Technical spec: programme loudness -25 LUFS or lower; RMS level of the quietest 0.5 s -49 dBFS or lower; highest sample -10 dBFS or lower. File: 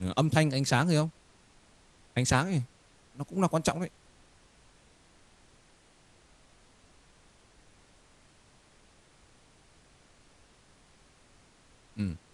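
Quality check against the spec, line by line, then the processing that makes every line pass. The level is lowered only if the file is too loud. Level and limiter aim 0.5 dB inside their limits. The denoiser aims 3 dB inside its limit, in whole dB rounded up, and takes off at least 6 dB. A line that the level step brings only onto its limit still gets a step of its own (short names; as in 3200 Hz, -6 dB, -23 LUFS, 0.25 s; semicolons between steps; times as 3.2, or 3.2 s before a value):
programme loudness -29.5 LUFS: OK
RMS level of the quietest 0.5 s -61 dBFS: OK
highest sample -9.0 dBFS: fail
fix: limiter -10.5 dBFS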